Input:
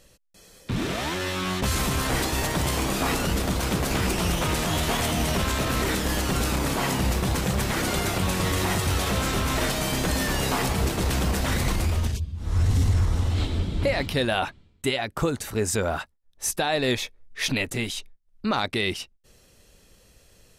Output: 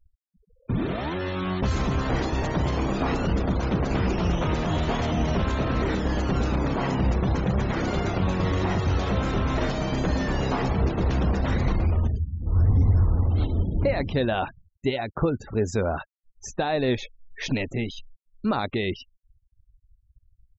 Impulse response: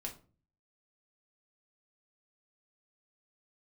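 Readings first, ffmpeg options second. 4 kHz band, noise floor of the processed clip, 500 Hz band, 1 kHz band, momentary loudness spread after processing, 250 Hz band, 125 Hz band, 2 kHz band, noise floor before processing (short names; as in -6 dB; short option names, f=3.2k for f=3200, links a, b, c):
-8.5 dB, -68 dBFS, +1.0 dB, -1.0 dB, 6 LU, +1.5 dB, +2.0 dB, -5.0 dB, -58 dBFS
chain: -af "aresample=16000,aresample=44100,tiltshelf=f=1.4k:g=5,afftfilt=real='re*gte(hypot(re,im),0.02)':imag='im*gte(hypot(re,im),0.02)':win_size=1024:overlap=0.75,volume=-3dB"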